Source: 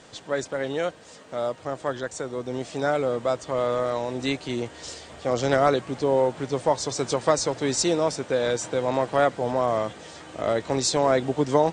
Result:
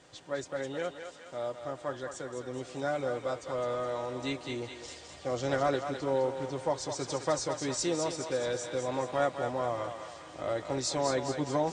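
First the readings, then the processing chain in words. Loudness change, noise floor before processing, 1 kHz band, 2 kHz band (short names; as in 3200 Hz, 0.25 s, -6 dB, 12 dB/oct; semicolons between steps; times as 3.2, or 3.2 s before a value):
-8.0 dB, -48 dBFS, -8.0 dB, -7.5 dB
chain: notch comb 220 Hz; on a send: thinning echo 0.209 s, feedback 58%, high-pass 600 Hz, level -6 dB; on the sum: gain -7.5 dB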